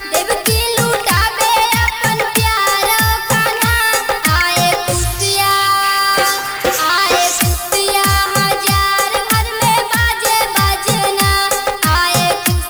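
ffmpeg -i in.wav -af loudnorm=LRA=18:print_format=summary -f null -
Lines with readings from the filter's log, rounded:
Input Integrated:    -12.9 LUFS
Input True Peak:      -1.0 dBTP
Input LRA:             0.4 LU
Input Threshold:     -22.9 LUFS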